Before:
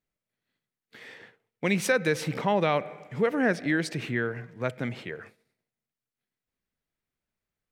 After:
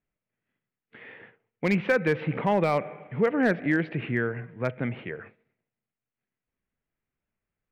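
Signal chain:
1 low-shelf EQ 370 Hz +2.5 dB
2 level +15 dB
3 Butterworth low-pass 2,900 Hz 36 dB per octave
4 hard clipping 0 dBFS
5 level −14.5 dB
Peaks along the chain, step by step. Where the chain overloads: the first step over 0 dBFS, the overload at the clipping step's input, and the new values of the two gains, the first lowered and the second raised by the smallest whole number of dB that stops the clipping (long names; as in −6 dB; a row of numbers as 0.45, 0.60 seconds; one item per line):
−10.0, +5.0, +4.5, 0.0, −14.5 dBFS
step 2, 4.5 dB
step 2 +10 dB, step 5 −9.5 dB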